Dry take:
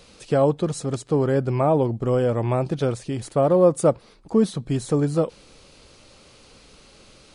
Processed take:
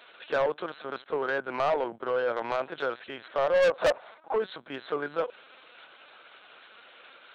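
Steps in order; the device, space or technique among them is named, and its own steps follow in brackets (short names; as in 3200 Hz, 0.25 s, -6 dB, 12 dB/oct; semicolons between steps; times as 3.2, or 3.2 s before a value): 3.55–4.37 bell 710 Hz +13 dB 1.2 oct; talking toy (LPC vocoder at 8 kHz pitch kept; HPF 670 Hz 12 dB/oct; bell 1500 Hz +10 dB 0.39 oct; soft clip -21 dBFS, distortion -4 dB); gain +1.5 dB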